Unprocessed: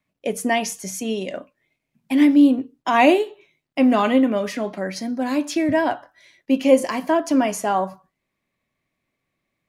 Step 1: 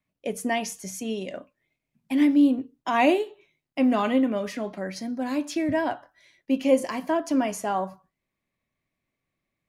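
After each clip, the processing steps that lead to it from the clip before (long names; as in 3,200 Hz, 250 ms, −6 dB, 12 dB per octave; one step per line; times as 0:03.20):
low-shelf EQ 120 Hz +5.5 dB
level −6 dB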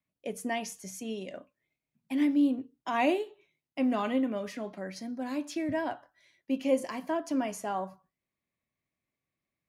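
high-pass filter 46 Hz
level −6.5 dB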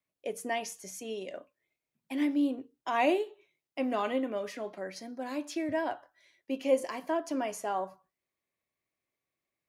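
low shelf with overshoot 290 Hz −6 dB, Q 1.5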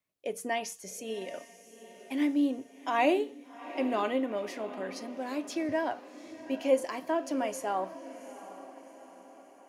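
feedback delay with all-pass diffusion 772 ms, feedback 50%, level −14.5 dB
level +1 dB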